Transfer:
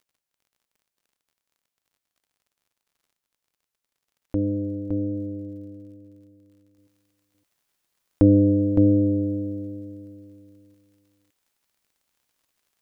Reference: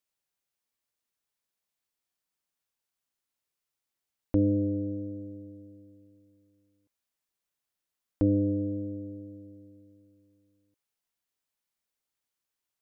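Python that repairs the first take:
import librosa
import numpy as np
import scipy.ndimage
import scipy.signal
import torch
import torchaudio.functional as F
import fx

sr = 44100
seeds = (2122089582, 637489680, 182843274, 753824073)

y = fx.fix_declick_ar(x, sr, threshold=6.5)
y = fx.fix_echo_inverse(y, sr, delay_ms=563, level_db=-5.0)
y = fx.fix_level(y, sr, at_s=6.78, step_db=-9.0)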